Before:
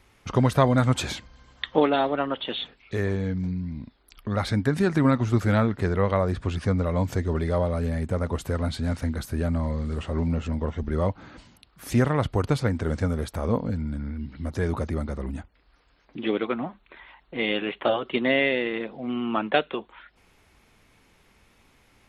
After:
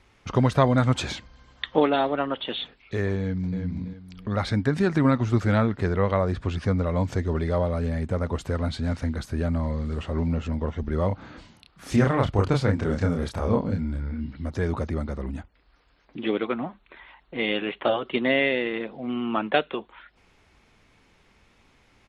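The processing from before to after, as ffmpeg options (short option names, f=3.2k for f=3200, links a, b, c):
-filter_complex "[0:a]asplit=2[a][b];[b]afade=t=in:st=3.19:d=0.01,afade=t=out:st=3.6:d=0.01,aecho=0:1:330|660|990|1320:0.501187|0.150356|0.0451069|0.0135321[c];[a][c]amix=inputs=2:normalize=0,asplit=3[d][e][f];[d]afade=t=out:st=11.1:d=0.02[g];[e]asplit=2[h][i];[i]adelay=30,volume=-2.5dB[j];[h][j]amix=inputs=2:normalize=0,afade=t=in:st=11.1:d=0.02,afade=t=out:st=14.31:d=0.02[k];[f]afade=t=in:st=14.31:d=0.02[l];[g][k][l]amix=inputs=3:normalize=0,lowpass=7.1k"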